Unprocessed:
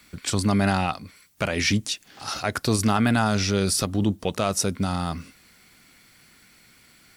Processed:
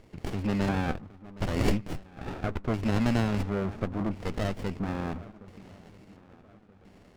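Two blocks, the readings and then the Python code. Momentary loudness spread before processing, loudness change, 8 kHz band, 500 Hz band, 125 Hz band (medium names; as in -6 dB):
10 LU, -7.0 dB, -21.5 dB, -5.5 dB, -4.5 dB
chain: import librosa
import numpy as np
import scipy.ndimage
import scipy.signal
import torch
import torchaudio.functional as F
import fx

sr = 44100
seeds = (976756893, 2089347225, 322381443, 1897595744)

y = fx.diode_clip(x, sr, knee_db=-18.0)
y = fx.echo_swing(y, sr, ms=1279, ratio=1.5, feedback_pct=36, wet_db=-19)
y = fx.filter_lfo_lowpass(y, sr, shape='square', hz=0.73, low_hz=990.0, high_hz=2600.0, q=7.5)
y = scipy.signal.sosfilt(scipy.signal.butter(4, 66.0, 'highpass', fs=sr, output='sos'), y)
y = fx.running_max(y, sr, window=33)
y = F.gain(torch.from_numpy(y), -4.5).numpy()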